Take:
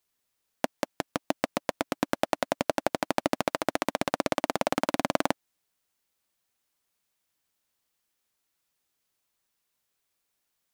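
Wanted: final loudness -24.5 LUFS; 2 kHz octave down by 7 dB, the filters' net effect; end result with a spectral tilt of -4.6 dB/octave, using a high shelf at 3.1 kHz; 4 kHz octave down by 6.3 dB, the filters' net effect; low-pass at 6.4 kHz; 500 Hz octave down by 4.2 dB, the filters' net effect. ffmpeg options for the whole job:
-af "lowpass=6400,equalizer=f=500:t=o:g=-5,equalizer=f=2000:t=o:g=-8.5,highshelf=f=3100:g=5,equalizer=f=4000:t=o:g=-8.5,volume=2.99"

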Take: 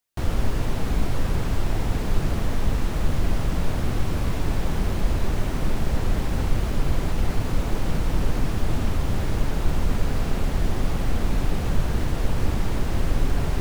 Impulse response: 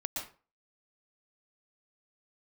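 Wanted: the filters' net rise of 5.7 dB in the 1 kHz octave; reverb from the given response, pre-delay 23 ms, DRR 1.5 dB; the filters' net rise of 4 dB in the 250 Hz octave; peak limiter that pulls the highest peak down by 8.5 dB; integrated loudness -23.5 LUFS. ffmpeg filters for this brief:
-filter_complex "[0:a]equalizer=f=250:t=o:g=5,equalizer=f=1000:t=o:g=7,alimiter=limit=0.158:level=0:latency=1,asplit=2[s0][s1];[1:a]atrim=start_sample=2205,adelay=23[s2];[s1][s2]afir=irnorm=-1:irlink=0,volume=0.631[s3];[s0][s3]amix=inputs=2:normalize=0,volume=1.33"

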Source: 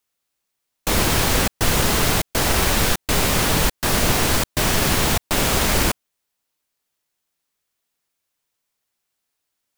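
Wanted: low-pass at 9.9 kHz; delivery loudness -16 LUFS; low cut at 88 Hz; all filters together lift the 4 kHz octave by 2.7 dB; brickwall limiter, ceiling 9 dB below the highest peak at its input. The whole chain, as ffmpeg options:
-af "highpass=88,lowpass=9900,equalizer=f=4000:t=o:g=3.5,volume=2.37,alimiter=limit=0.447:level=0:latency=1"

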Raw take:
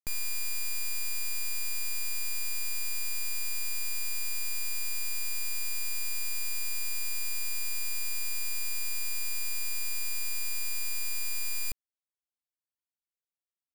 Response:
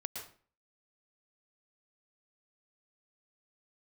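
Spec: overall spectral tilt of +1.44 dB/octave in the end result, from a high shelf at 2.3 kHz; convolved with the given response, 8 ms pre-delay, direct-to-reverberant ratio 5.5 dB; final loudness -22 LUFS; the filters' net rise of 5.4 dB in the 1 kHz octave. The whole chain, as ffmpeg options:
-filter_complex "[0:a]equalizer=f=1000:t=o:g=5.5,highshelf=f=2300:g=5.5,asplit=2[s0][s1];[1:a]atrim=start_sample=2205,adelay=8[s2];[s1][s2]afir=irnorm=-1:irlink=0,volume=0.562[s3];[s0][s3]amix=inputs=2:normalize=0,volume=1.58"

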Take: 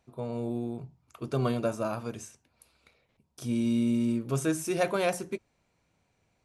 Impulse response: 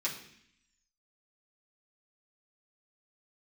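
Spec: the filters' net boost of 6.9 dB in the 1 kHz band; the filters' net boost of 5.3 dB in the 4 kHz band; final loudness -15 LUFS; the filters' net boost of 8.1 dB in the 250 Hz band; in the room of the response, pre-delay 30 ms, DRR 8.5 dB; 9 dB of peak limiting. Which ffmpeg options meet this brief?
-filter_complex "[0:a]equalizer=f=250:t=o:g=8.5,equalizer=f=1000:t=o:g=9,equalizer=f=4000:t=o:g=6,alimiter=limit=0.141:level=0:latency=1,asplit=2[s0][s1];[1:a]atrim=start_sample=2205,adelay=30[s2];[s1][s2]afir=irnorm=-1:irlink=0,volume=0.224[s3];[s0][s3]amix=inputs=2:normalize=0,volume=3.98"

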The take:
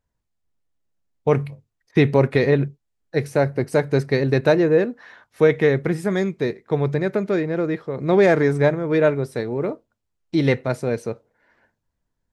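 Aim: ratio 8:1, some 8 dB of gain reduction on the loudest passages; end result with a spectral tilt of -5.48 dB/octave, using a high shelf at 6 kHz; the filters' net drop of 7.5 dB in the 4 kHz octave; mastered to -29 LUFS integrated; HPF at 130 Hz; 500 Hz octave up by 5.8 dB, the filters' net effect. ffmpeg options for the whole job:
-af "highpass=130,equalizer=f=500:t=o:g=7,equalizer=f=4000:t=o:g=-7,highshelf=f=6000:g=-5,acompressor=threshold=0.224:ratio=8,volume=0.376"

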